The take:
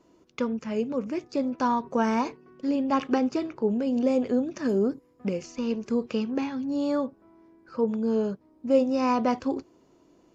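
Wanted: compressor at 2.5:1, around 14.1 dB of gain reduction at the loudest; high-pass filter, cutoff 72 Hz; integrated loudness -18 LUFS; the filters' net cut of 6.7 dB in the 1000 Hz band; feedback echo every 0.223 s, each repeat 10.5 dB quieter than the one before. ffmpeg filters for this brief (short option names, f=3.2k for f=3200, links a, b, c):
-af "highpass=72,equalizer=f=1k:t=o:g=-8,acompressor=threshold=-40dB:ratio=2.5,aecho=1:1:223|446|669:0.299|0.0896|0.0269,volume=20.5dB"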